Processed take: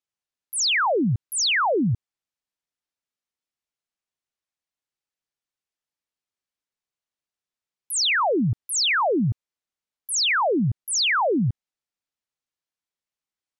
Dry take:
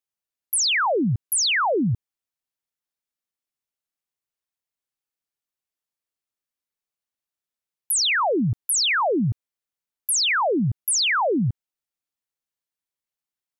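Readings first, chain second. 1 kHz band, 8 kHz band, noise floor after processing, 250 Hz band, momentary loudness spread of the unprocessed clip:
0.0 dB, -3.0 dB, under -85 dBFS, 0.0 dB, 8 LU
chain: LPF 7600 Hz 12 dB/oct

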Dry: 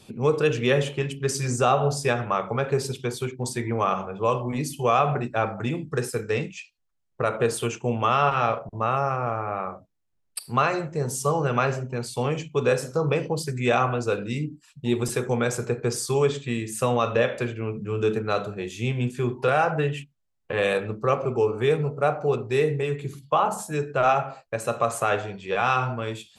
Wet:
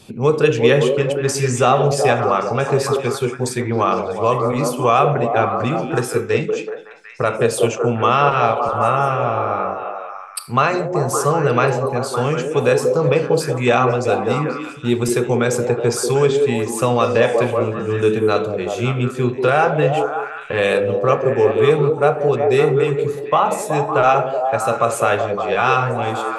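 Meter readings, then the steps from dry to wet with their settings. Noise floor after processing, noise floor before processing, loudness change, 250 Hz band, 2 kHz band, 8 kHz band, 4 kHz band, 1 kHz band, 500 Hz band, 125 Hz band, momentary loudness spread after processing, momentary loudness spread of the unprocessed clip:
-32 dBFS, -71 dBFS, +7.5 dB, +7.5 dB, +6.5 dB, +6.0 dB, +6.0 dB, +7.5 dB, +9.0 dB, +6.0 dB, 7 LU, 8 LU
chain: delay with a stepping band-pass 0.187 s, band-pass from 390 Hz, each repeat 0.7 oct, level -1 dB; gain +6 dB

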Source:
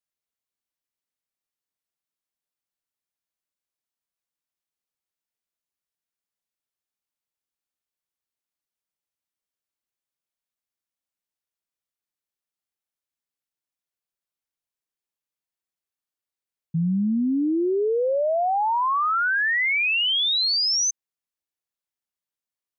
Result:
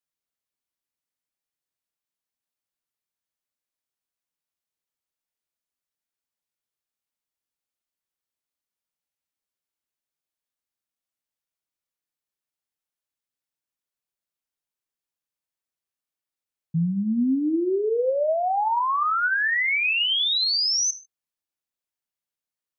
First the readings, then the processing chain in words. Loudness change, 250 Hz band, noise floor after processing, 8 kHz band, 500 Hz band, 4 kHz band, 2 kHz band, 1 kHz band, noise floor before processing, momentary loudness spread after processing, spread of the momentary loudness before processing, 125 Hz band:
-1.0 dB, -0.5 dB, under -85 dBFS, n/a, -0.5 dB, -0.5 dB, -0.5 dB, -1.0 dB, under -85 dBFS, 6 LU, 5 LU, -0.5 dB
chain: non-linear reverb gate 0.17 s falling, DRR 11 dB; gain -1 dB

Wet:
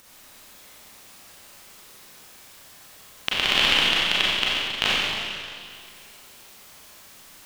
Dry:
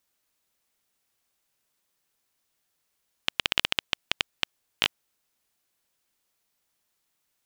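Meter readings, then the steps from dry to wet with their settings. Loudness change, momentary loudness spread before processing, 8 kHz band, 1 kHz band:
+8.0 dB, 8 LU, +8.0 dB, +9.5 dB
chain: high shelf 5700 Hz -4.5 dB; upward compressor, threshold -39 dBFS; Schroeder reverb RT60 2.2 s, combs from 30 ms, DRR -7.5 dB; gain +1.5 dB

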